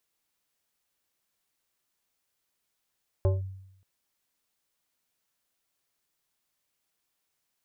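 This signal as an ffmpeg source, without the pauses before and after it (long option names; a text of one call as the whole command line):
ffmpeg -f lavfi -i "aevalsrc='0.126*pow(10,-3*t/0.78)*sin(2*PI*95.4*t+0.72*clip(1-t/0.17,0,1)*sin(2*PI*5*95.4*t))':duration=0.58:sample_rate=44100" out.wav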